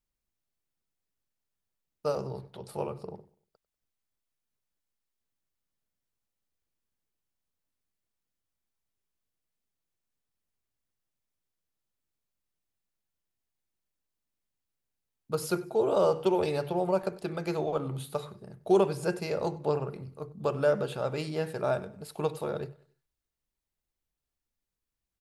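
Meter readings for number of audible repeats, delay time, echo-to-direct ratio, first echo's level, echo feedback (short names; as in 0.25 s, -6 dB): 2, 96 ms, -21.0 dB, -21.5 dB, 40%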